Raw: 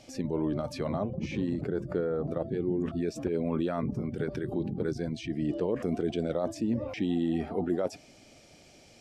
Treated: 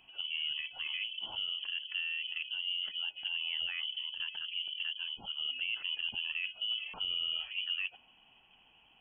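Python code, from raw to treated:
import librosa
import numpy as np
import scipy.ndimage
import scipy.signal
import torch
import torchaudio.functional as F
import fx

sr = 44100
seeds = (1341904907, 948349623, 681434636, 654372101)

y = fx.freq_invert(x, sr, carrier_hz=3200)
y = y * librosa.db_to_amplitude(-7.0)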